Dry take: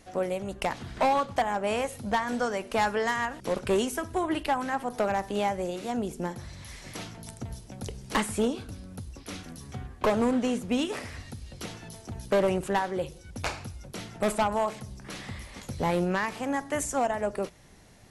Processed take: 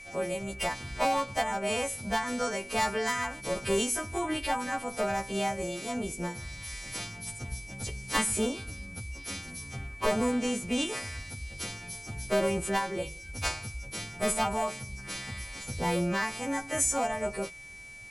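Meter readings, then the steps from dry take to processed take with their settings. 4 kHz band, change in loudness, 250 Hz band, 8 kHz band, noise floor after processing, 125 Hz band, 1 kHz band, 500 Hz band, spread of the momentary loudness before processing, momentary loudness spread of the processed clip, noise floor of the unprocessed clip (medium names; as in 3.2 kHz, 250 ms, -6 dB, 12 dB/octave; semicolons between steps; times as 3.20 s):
+3.0 dB, -2.0 dB, -2.5 dB, +7.5 dB, -45 dBFS, -1.0 dB, -2.5 dB, -3.0 dB, 15 LU, 11 LU, -49 dBFS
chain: partials quantised in pitch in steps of 2 st; bass shelf 91 Hz +11 dB; whistle 2.3 kHz -42 dBFS; trim -3 dB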